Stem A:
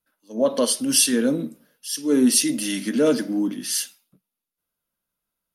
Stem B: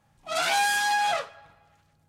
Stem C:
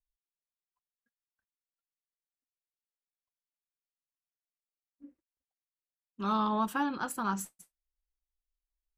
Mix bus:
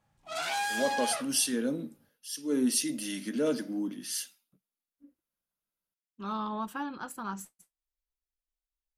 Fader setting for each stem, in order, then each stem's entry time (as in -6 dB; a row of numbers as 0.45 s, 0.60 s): -10.0 dB, -8.0 dB, -5.0 dB; 0.40 s, 0.00 s, 0.00 s